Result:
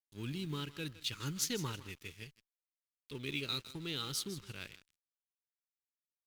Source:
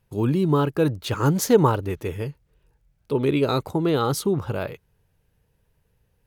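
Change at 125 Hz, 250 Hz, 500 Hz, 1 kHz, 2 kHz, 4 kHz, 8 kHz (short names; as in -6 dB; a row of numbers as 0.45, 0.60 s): -19.5, -20.5, -25.5, -23.5, -10.0, -4.0, -7.5 dB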